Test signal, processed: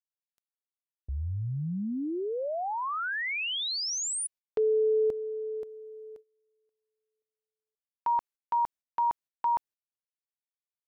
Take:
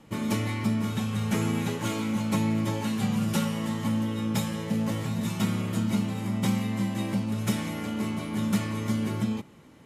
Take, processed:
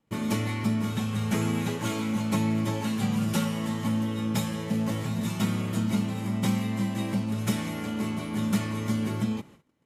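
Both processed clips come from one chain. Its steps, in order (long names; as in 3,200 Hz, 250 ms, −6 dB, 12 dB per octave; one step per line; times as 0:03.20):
noise gate −49 dBFS, range −21 dB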